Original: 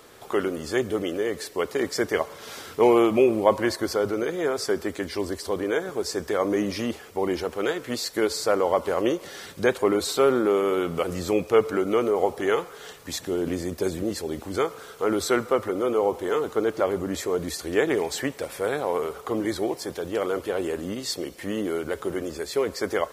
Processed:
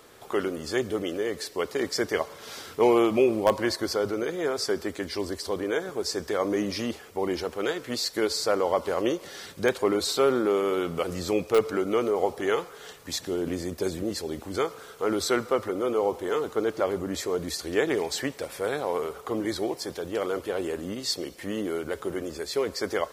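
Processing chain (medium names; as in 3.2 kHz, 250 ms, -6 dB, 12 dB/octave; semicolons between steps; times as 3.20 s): dynamic bell 4.7 kHz, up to +5 dB, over -46 dBFS, Q 1.5; in parallel at -9.5 dB: integer overflow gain 6.5 dB; on the sum: trim -5 dB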